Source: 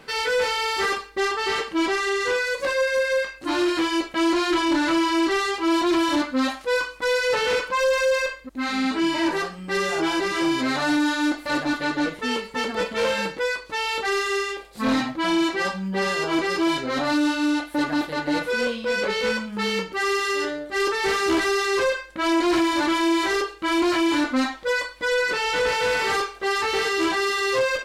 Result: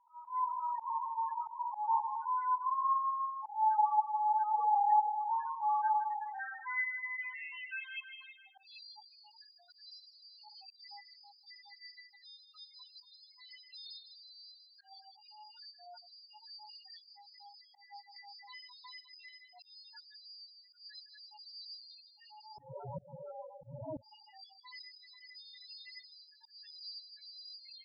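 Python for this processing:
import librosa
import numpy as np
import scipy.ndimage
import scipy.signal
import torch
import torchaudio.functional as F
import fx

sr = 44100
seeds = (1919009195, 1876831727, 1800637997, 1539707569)

p1 = fx.band_swap(x, sr, width_hz=500)
p2 = fx.recorder_agc(p1, sr, target_db=-16.0, rise_db_per_s=19.0, max_gain_db=30)
p3 = fx.filter_sweep_bandpass(p2, sr, from_hz=990.0, to_hz=4700.0, start_s=5.42, end_s=8.97, q=4.2)
p4 = fx.tremolo_shape(p3, sr, shape='saw_up', hz=1.0, depth_pct=80)
p5 = p4 + fx.echo_feedback(p4, sr, ms=158, feedback_pct=56, wet_db=-8.0, dry=0)
p6 = fx.sample_hold(p5, sr, seeds[0], rate_hz=2700.0, jitter_pct=0, at=(22.57, 24.01), fade=0.02)
p7 = fx.spec_topn(p6, sr, count=4)
p8 = fx.riaa(p7, sr, side='playback')
p9 = fx.auto_swell(p8, sr, attack_ms=202.0)
y = fx.band_squash(p9, sr, depth_pct=100, at=(18.16, 19.29))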